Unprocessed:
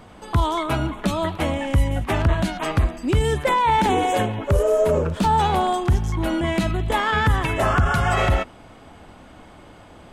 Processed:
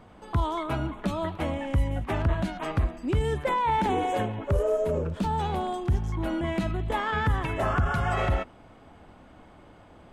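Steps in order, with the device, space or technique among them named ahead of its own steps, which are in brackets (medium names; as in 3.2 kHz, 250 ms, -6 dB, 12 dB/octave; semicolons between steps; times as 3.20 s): 4.76–5.94 s: dynamic bell 1.1 kHz, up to -5 dB, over -32 dBFS, Q 0.73; behind a face mask (treble shelf 3.1 kHz -8 dB); trim -6 dB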